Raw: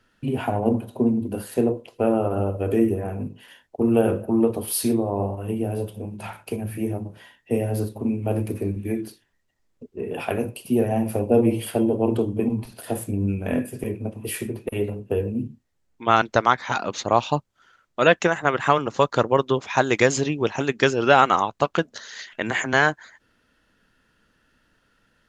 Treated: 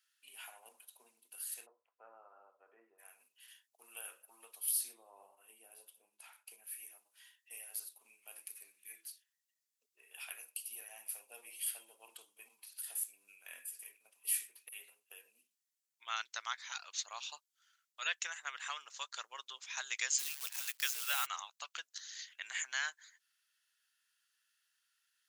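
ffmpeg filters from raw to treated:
-filter_complex "[0:a]asplit=3[a][b][c];[a]afade=t=out:st=1.65:d=0.02[d];[b]lowpass=f=1.3k:w=0.5412,lowpass=f=1.3k:w=1.3066,afade=t=in:st=1.65:d=0.02,afade=t=out:st=2.98:d=0.02[e];[c]afade=t=in:st=2.98:d=0.02[f];[d][e][f]amix=inputs=3:normalize=0,asettb=1/sr,asplit=3[g][h][i];[g]atrim=end=4.714[j];[h]atrim=start=4.71:end=6.64,asetpts=PTS-STARTPTS,afade=t=in:d=0.004:c=qsin,afade=t=out:st=1.926:d=0.004:c=qsin,tiltshelf=f=970:g=7.5[k];[i]atrim=start=6.636[l];[j][k]acrossfade=d=0.004:c1=hsin:c2=qsin[m];[m][l]acrossfade=d=0.004:c1=qsin:c2=hsin,asplit=3[n][o][p];[n]afade=t=out:st=20.18:d=0.02[q];[o]acrusher=bits=6:dc=4:mix=0:aa=0.000001,afade=t=in:st=20.18:d=0.02,afade=t=out:st=21.25:d=0.02[r];[p]afade=t=in:st=21.25:d=0.02[s];[q][r][s]amix=inputs=3:normalize=0,highpass=1.3k,aderivative,volume=-3.5dB"

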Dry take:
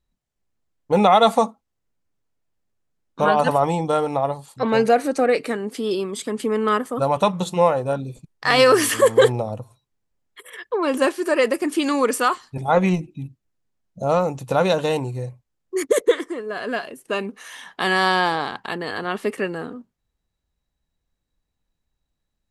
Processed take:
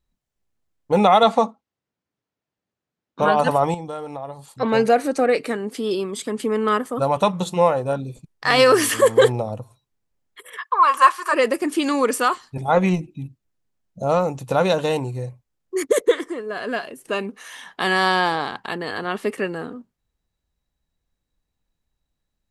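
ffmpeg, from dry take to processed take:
-filter_complex "[0:a]asettb=1/sr,asplit=3[a][b][c];[a]atrim=end=1.234[d];[b]atrim=start=1.23:end=3.22,asetpts=PTS-STARTPTS,afade=t=in:d=0.004:c=qsin,afade=t=out:st=1.986:d=0.004:c=qsin,highpass=120,lowpass=5.3k[e];[c]atrim=start=3.216[f];[d][e]acrossfade=d=0.004:c1=hsin:c2=qsin[g];[g][f]acrossfade=d=0.004:c1=qsin:c2=hsin,asettb=1/sr,asplit=3[h][i][j];[h]atrim=end=3.744[k];[i]atrim=start=3.74:end=4.51,asetpts=PTS-STARTPTS,afade=t=in:d=0.004:c=qsin,afade=t=out:st=0.766:d=0.004:c=qsin,acompressor=threshold=-36dB:ratio=2:attack=3.2:release=140:knee=1:detection=peak[l];[j]atrim=start=4.506[m];[k][l]acrossfade=d=0.004:c1=hsin:c2=qsin[n];[n][m]acrossfade=d=0.004:c1=qsin:c2=hsin,asplit=3[o][p][q];[o]afade=t=out:st=10.57:d=0.02[r];[p]highpass=f=1.1k:t=q:w=8.9,afade=t=in:st=10.57:d=0.02,afade=t=out:st=11.32:d=0.02[s];[q]afade=t=in:st=11.32:d=0.02[t];[r][s][t]amix=inputs=3:normalize=0,asettb=1/sr,asplit=3[u][v][w];[u]atrim=end=16.234[x];[v]atrim=start=16.23:end=17.24,asetpts=PTS-STARTPTS,afade=t=in:d=0.004:c=qsin,afade=t=out:st=1.006:d=0.004:c=qsin,acompressor=mode=upward:threshold=-37dB:ratio=2.5:attack=3.2:release=140:knee=2.83:detection=peak[y];[w]atrim=start=17.236[z];[x][y]acrossfade=d=0.004:c1=hsin:c2=qsin[aa];[aa][z]acrossfade=d=0.004:c1=qsin:c2=hsin"

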